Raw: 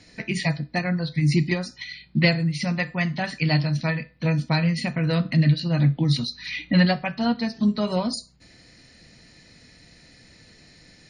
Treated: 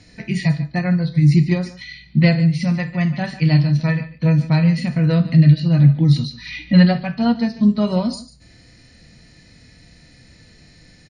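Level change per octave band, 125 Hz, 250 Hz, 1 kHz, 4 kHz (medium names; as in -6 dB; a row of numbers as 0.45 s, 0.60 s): +8.0 dB, +7.0 dB, +1.0 dB, -1.0 dB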